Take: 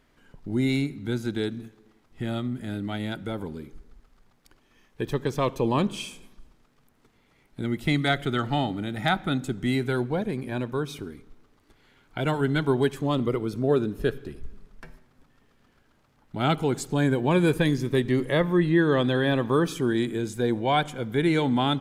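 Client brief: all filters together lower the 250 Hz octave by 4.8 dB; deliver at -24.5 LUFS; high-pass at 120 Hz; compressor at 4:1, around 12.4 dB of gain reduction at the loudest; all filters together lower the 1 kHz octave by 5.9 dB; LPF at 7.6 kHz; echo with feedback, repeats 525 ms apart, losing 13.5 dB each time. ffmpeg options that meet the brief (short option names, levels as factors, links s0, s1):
-af "highpass=120,lowpass=7600,equalizer=f=250:t=o:g=-5.5,equalizer=f=1000:t=o:g=-8,acompressor=threshold=0.0158:ratio=4,aecho=1:1:525|1050:0.211|0.0444,volume=5.62"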